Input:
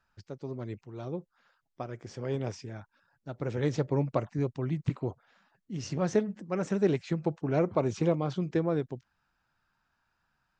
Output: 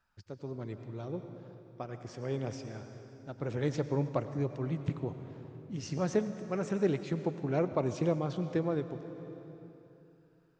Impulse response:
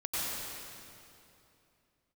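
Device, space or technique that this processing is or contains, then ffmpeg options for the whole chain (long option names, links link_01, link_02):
compressed reverb return: -filter_complex "[0:a]asplit=2[link_01][link_02];[1:a]atrim=start_sample=2205[link_03];[link_02][link_03]afir=irnorm=-1:irlink=0,acompressor=threshold=-23dB:ratio=6,volume=-12dB[link_04];[link_01][link_04]amix=inputs=2:normalize=0,volume=-4dB"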